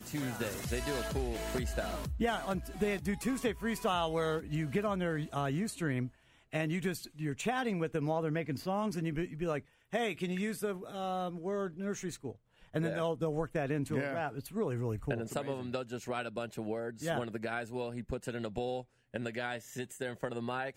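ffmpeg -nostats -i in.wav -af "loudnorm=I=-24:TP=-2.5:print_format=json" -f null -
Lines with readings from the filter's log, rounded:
"input_i" : "-36.3",
"input_tp" : "-18.1",
"input_lra" : "5.0",
"input_thresh" : "-46.4",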